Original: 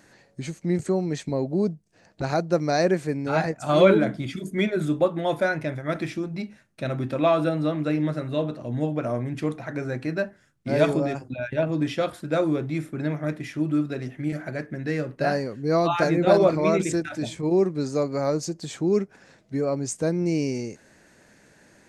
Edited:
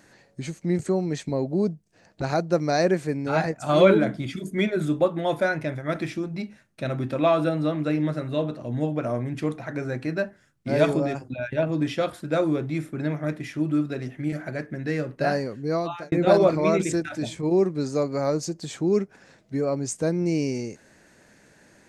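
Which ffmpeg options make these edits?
ffmpeg -i in.wav -filter_complex "[0:a]asplit=2[link_01][link_02];[link_01]atrim=end=16.12,asetpts=PTS-STARTPTS,afade=type=out:start_time=15.54:duration=0.58[link_03];[link_02]atrim=start=16.12,asetpts=PTS-STARTPTS,afade=type=in:duration=0.004:curve=hsin[link_04];[link_03][link_04]concat=n=2:v=0:a=1" out.wav

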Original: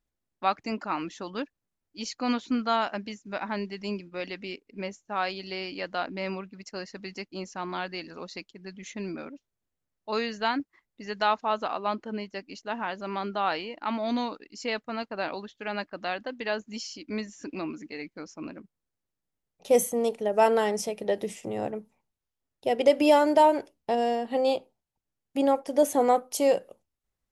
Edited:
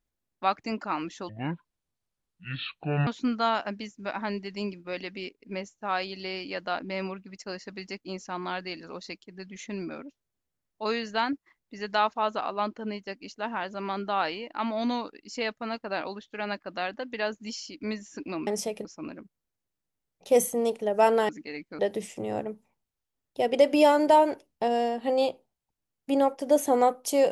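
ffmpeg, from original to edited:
ffmpeg -i in.wav -filter_complex "[0:a]asplit=7[link_01][link_02][link_03][link_04][link_05][link_06][link_07];[link_01]atrim=end=1.294[link_08];[link_02]atrim=start=1.29:end=2.34,asetpts=PTS-STARTPTS,asetrate=26019,aresample=44100,atrim=end_sample=78483,asetpts=PTS-STARTPTS[link_09];[link_03]atrim=start=2.336:end=17.742[link_10];[link_04]atrim=start=20.678:end=21.062[link_11];[link_05]atrim=start=18.238:end=20.682[link_12];[link_06]atrim=start=17.738:end=18.242[link_13];[link_07]atrim=start=21.058[link_14];[link_08][link_09]acrossfade=duration=0.004:curve1=hsin:curve2=hsin[link_15];[link_15][link_10]acrossfade=duration=0.004:curve1=hsin:curve2=hsin[link_16];[link_16][link_11]acrossfade=duration=0.004:curve1=hsin:curve2=hsin[link_17];[link_17][link_12]acrossfade=duration=0.004:curve1=hsin:curve2=hsin[link_18];[link_18][link_13]acrossfade=duration=0.004:curve1=hsin:curve2=hsin[link_19];[link_19][link_14]acrossfade=duration=0.004:curve1=hsin:curve2=hsin" out.wav

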